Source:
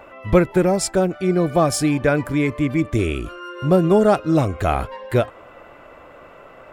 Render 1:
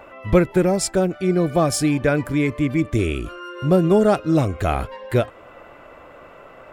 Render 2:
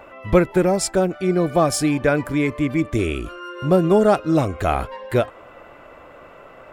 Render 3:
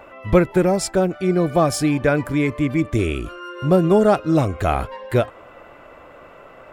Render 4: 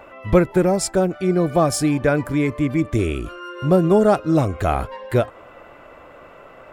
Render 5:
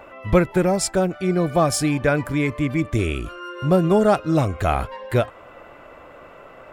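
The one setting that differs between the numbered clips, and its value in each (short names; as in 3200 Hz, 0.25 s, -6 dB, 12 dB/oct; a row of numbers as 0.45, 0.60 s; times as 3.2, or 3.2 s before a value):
dynamic EQ, frequency: 940, 110, 8500, 2800, 350 Hz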